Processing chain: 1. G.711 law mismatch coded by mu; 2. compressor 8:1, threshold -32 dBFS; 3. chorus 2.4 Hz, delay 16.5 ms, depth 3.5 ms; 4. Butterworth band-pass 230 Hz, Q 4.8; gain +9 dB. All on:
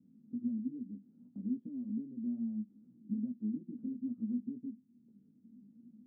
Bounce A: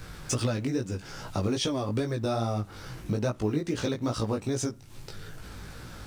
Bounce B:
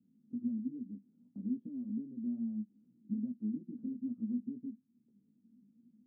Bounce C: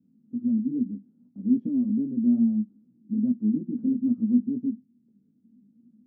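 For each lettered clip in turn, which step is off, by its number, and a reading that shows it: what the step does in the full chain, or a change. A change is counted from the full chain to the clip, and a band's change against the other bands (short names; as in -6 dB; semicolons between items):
4, momentary loudness spread change -2 LU; 1, distortion -28 dB; 2, loudness change +13.5 LU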